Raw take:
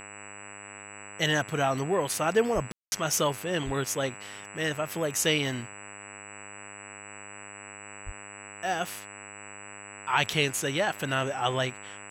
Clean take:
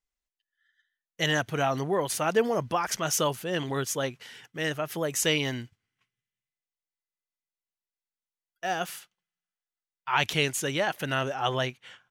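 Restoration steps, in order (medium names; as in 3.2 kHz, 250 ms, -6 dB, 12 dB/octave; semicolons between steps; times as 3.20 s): de-hum 101.3 Hz, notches 28; band-stop 7.8 kHz, Q 30; 2.54–2.66 s: high-pass 140 Hz 24 dB/octave; 3.65–3.77 s: high-pass 140 Hz 24 dB/octave; 8.05–8.17 s: high-pass 140 Hz 24 dB/octave; room tone fill 2.72–2.92 s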